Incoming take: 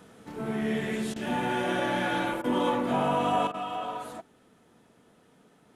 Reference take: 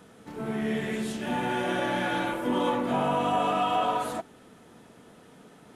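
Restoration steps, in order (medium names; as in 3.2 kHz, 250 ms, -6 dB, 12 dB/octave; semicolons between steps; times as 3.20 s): interpolate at 1.14/2.42/3.52 s, 19 ms; gain correction +8 dB, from 3.47 s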